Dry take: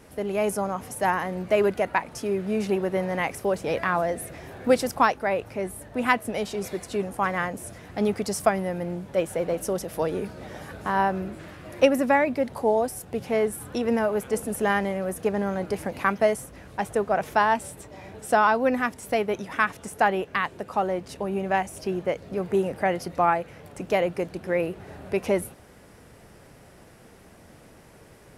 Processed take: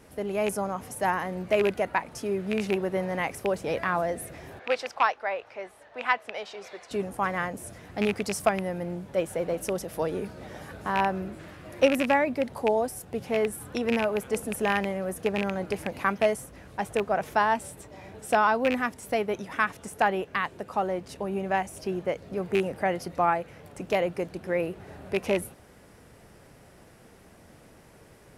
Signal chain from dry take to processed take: rattling part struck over -28 dBFS, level -15 dBFS; 4.59–6.91 three-band isolator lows -22 dB, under 500 Hz, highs -23 dB, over 5600 Hz; gain -2.5 dB

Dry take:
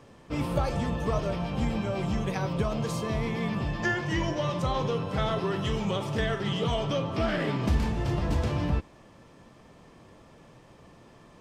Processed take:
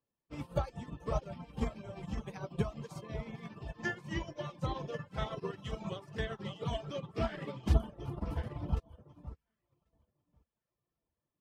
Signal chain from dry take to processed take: spectral gain 7.74–9.09, 1500–8600 Hz -11 dB; echo with dull and thin repeats by turns 0.546 s, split 1200 Hz, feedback 56%, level -5 dB; reverb removal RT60 0.88 s; upward expander 2.5:1, over -46 dBFS

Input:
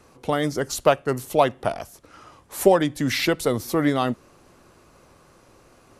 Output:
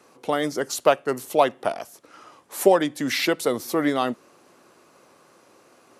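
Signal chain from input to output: HPF 240 Hz 12 dB/oct

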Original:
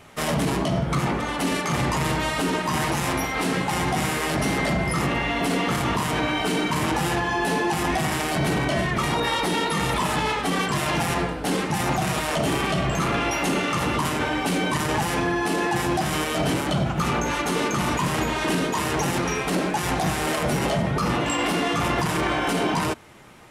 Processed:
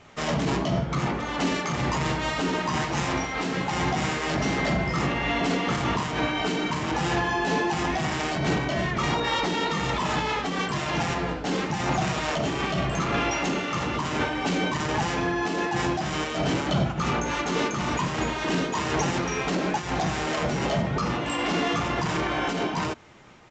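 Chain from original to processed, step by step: downsampling 16000 Hz; noise-modulated level, depth 60%

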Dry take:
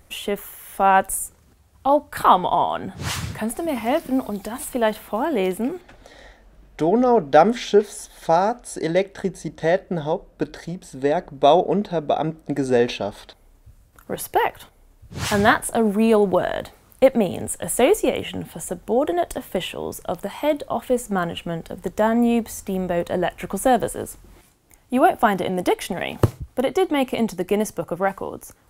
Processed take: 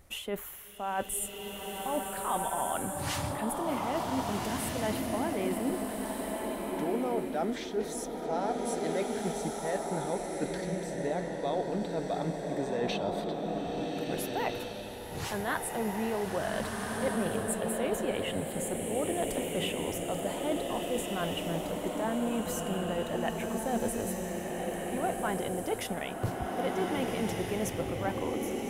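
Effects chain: reverse; compressor, threshold -25 dBFS, peak gain reduction 16.5 dB; reverse; bloom reverb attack 1.63 s, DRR -0.5 dB; gain -5.5 dB

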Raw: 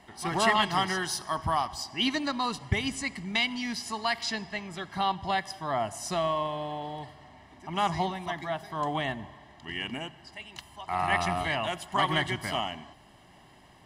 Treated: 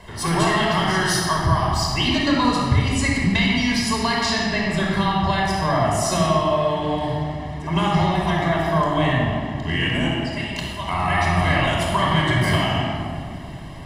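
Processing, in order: low shelf 92 Hz +9.5 dB; compressor, threshold -31 dBFS, peak gain reduction 15 dB; shoebox room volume 3900 m³, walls mixed, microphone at 5.2 m; gain +8 dB

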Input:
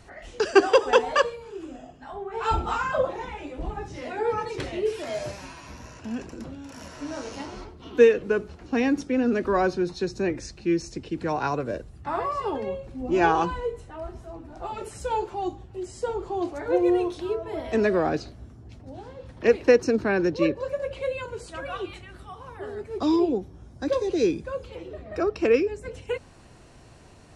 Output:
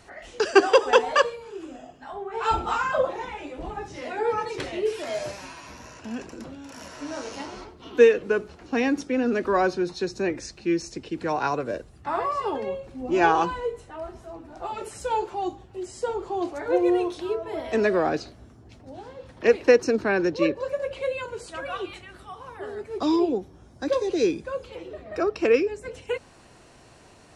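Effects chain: low shelf 190 Hz -9.5 dB; gain +2 dB

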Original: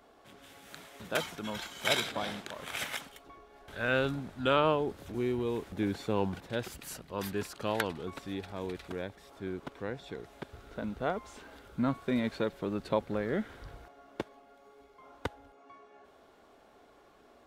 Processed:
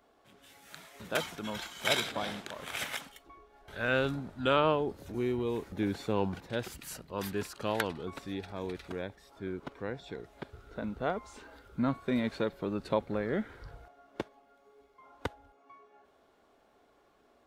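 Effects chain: spectral noise reduction 6 dB

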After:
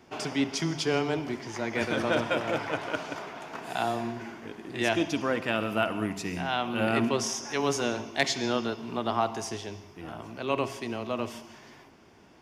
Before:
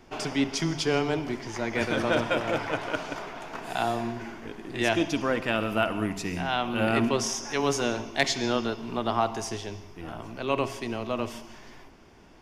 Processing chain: HPF 86 Hz; gain -1.5 dB

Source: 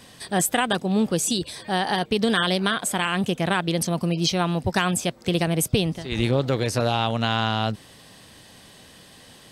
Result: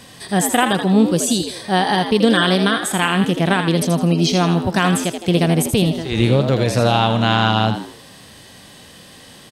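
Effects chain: frequency-shifting echo 81 ms, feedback 35%, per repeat +82 Hz, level -9 dB; harmonic-percussive split harmonic +7 dB; gain +1 dB

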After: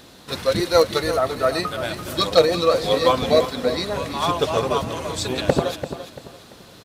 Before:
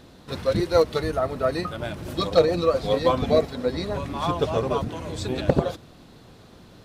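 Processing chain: tilt +2 dB/oct; on a send: feedback echo 0.34 s, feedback 31%, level -11 dB; on the sum: gain +4.5 dB

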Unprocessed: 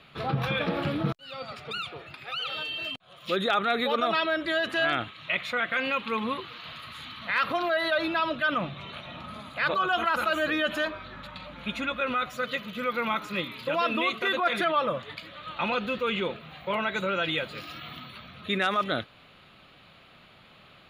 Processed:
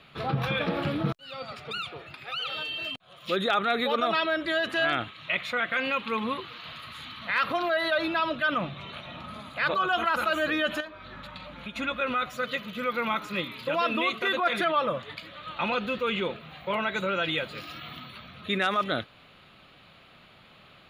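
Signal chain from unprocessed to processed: 10.8–11.76 compressor 6:1, threshold -36 dBFS, peak gain reduction 12 dB

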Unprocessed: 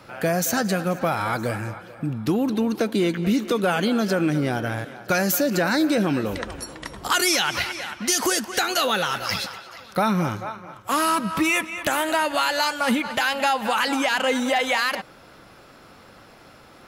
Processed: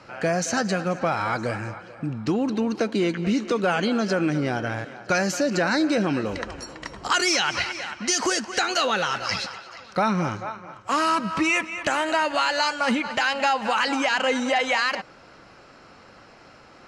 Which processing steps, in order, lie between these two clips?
LPF 7200 Hz 24 dB/oct; low shelf 320 Hz -3 dB; notch 3500 Hz, Q 7.9

